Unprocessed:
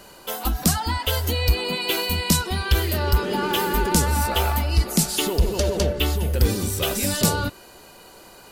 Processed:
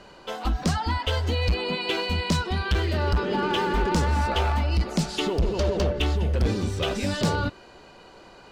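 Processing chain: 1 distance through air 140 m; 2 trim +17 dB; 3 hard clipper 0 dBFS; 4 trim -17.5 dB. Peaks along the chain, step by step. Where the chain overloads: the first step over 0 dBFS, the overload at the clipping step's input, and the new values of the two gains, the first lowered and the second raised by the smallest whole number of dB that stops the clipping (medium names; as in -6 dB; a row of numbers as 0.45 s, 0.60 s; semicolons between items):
-9.5 dBFS, +7.5 dBFS, 0.0 dBFS, -17.5 dBFS; step 2, 7.5 dB; step 2 +9 dB, step 4 -9.5 dB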